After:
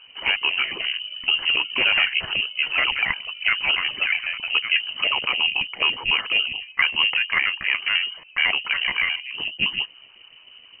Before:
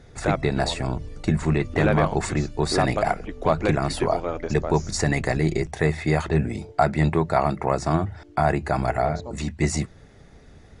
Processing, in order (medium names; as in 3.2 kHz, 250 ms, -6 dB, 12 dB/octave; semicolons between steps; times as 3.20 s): pitch shift switched off and on +5.5 st, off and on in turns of 71 ms; frequency inversion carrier 3 kHz